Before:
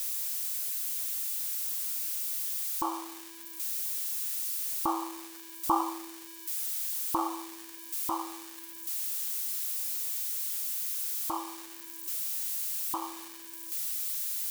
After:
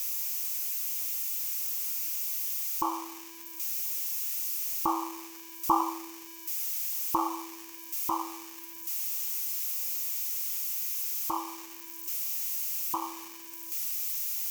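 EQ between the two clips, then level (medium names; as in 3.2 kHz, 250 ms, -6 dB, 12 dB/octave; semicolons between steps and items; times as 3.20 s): rippled EQ curve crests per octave 0.77, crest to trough 7 dB; 0.0 dB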